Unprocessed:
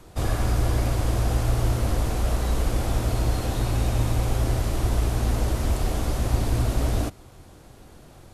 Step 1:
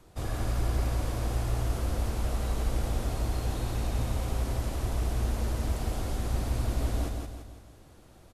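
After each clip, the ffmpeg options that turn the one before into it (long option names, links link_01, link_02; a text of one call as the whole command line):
ffmpeg -i in.wav -af "aecho=1:1:169|338|507|676|845|1014:0.631|0.284|0.128|0.0575|0.0259|0.0116,volume=-8.5dB" out.wav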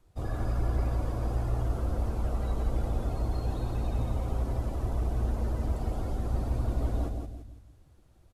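ffmpeg -i in.wav -af "afftdn=noise_reduction=12:noise_floor=-42" out.wav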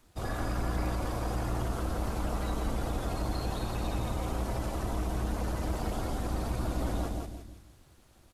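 ffmpeg -i in.wav -filter_complex "[0:a]tiltshelf=frequency=700:gain=-6,asplit=2[link_01][link_02];[link_02]alimiter=level_in=6.5dB:limit=-24dB:level=0:latency=1:release=33,volume=-6.5dB,volume=2.5dB[link_03];[link_01][link_03]amix=inputs=2:normalize=0,tremolo=f=250:d=0.667" out.wav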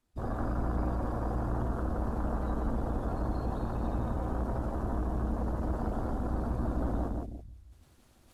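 ffmpeg -i in.wav -af "afwtdn=0.0141,equalizer=frequency=240:width=7.7:gain=7,areverse,acompressor=mode=upward:threshold=-47dB:ratio=2.5,areverse" out.wav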